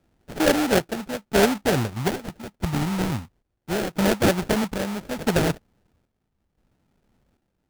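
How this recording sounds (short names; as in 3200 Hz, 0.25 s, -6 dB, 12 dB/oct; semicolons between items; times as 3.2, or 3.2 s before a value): phasing stages 12, 0.27 Hz, lowest notch 530–2800 Hz; aliases and images of a low sample rate 1100 Hz, jitter 20%; chopped level 0.76 Hz, depth 60%, duty 60%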